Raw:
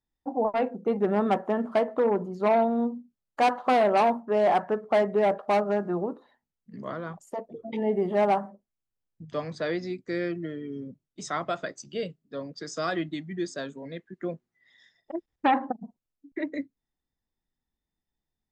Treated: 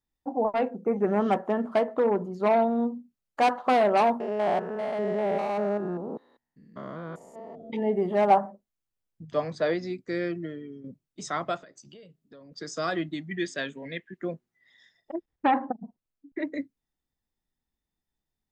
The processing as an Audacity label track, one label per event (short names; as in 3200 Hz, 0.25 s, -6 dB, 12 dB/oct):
0.880000	1.310000	spectral repair 2700–7000 Hz
4.200000	7.700000	stepped spectrum every 0.2 s
8.300000	9.740000	dynamic EQ 680 Hz, up to +6 dB, over -37 dBFS, Q 1.1
10.250000	10.840000	fade out equal-power, to -11 dB
11.570000	12.520000	compressor 10:1, threshold -46 dBFS
13.310000	14.170000	band shelf 2400 Hz +11 dB 1.2 oct
15.150000	16.390000	high shelf 3800 Hz -9 dB